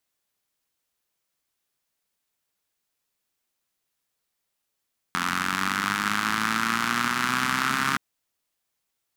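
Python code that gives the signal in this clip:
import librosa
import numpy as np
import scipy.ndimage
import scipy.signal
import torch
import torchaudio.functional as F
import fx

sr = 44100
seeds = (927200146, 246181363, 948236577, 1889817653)

y = fx.engine_four_rev(sr, seeds[0], length_s=2.82, rpm=2600, resonances_hz=(220.0, 1300.0), end_rpm=4100)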